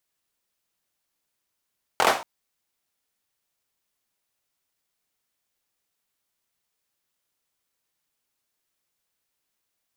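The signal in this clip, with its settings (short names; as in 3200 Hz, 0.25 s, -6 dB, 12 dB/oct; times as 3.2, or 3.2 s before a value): hand clap length 0.23 s, apart 23 ms, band 790 Hz, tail 0.36 s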